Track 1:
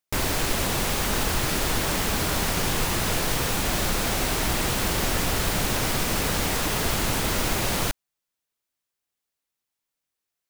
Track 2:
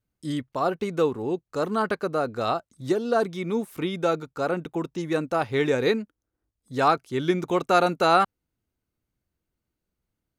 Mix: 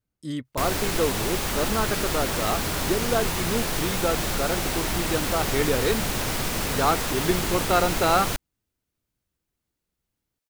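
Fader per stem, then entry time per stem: -2.0 dB, -2.0 dB; 0.45 s, 0.00 s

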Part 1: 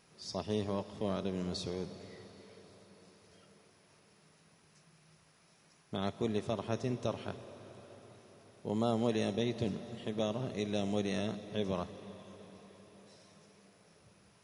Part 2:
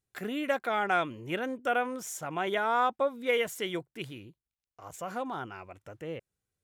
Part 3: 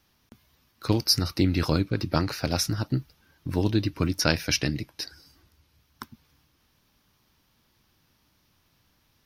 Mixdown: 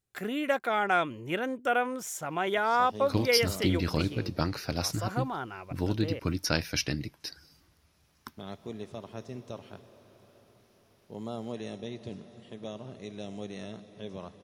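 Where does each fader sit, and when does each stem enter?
-6.0 dB, +1.5 dB, -5.0 dB; 2.45 s, 0.00 s, 2.25 s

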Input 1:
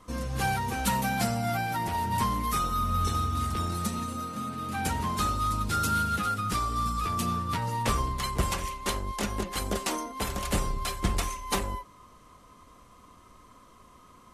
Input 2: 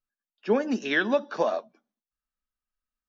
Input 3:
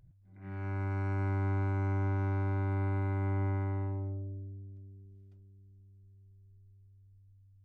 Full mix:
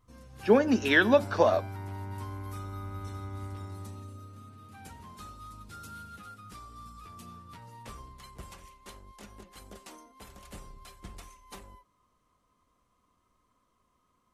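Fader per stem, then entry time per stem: -18.5 dB, +2.5 dB, -8.5 dB; 0.00 s, 0.00 s, 0.00 s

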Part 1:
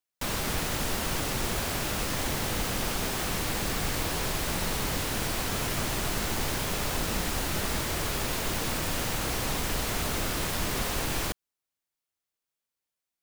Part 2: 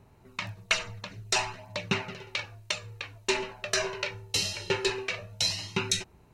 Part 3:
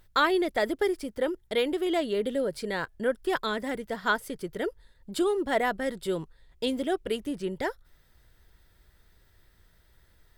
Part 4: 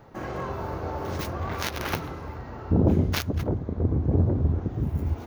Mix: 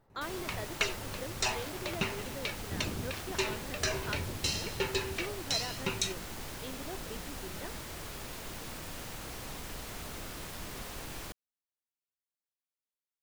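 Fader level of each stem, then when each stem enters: -12.5 dB, -5.0 dB, -16.0 dB, -18.5 dB; 0.00 s, 0.10 s, 0.00 s, 0.00 s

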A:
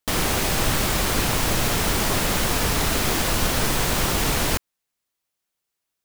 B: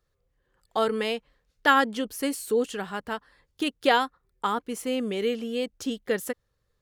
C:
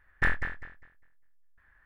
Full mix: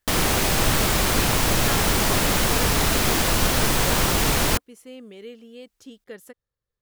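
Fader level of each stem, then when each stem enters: +1.5 dB, -13.0 dB, -18.5 dB; 0.00 s, 0.00 s, 0.00 s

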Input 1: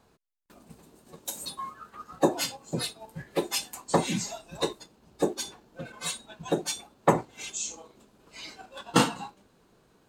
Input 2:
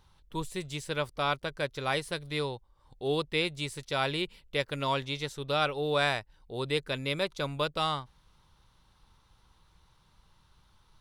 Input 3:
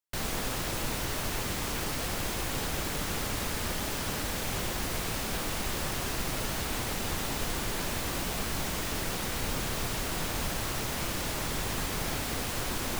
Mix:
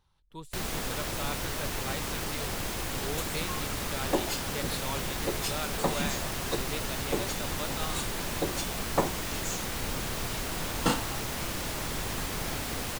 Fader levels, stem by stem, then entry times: -5.5 dB, -9.0 dB, -1.0 dB; 1.90 s, 0.00 s, 0.40 s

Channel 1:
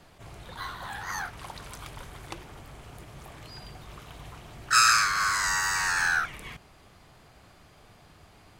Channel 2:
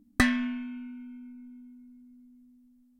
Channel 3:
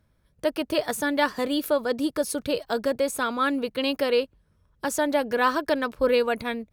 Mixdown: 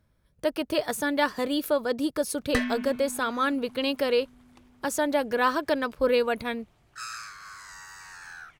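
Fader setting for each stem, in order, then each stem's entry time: -18.5 dB, -3.5 dB, -1.5 dB; 2.25 s, 2.35 s, 0.00 s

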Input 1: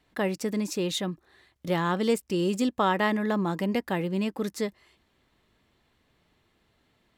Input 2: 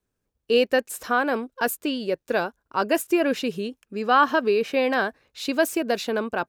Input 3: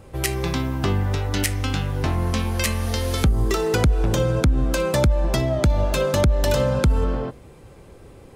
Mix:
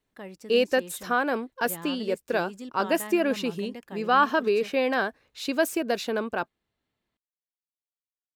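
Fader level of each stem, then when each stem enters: -14.0 dB, -2.5 dB, mute; 0.00 s, 0.00 s, mute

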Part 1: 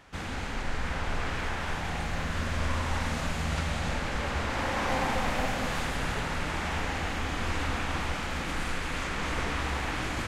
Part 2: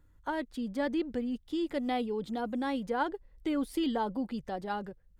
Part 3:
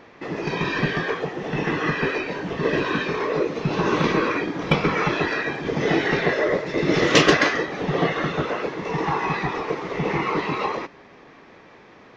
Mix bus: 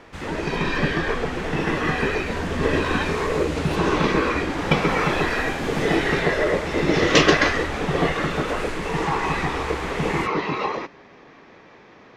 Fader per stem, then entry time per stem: +0.5 dB, -2.5 dB, 0.0 dB; 0.00 s, 0.00 s, 0.00 s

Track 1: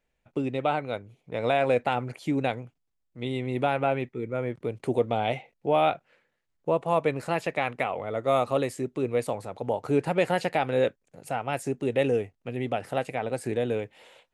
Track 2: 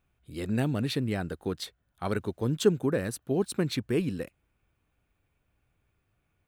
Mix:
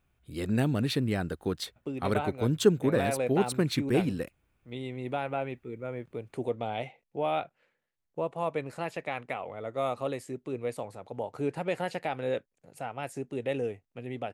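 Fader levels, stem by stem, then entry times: -7.0 dB, +1.0 dB; 1.50 s, 0.00 s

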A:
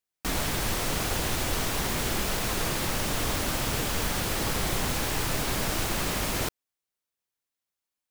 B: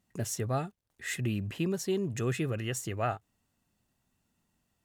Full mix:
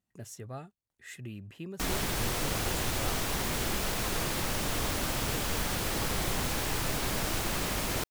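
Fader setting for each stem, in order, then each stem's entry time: -3.0 dB, -10.5 dB; 1.55 s, 0.00 s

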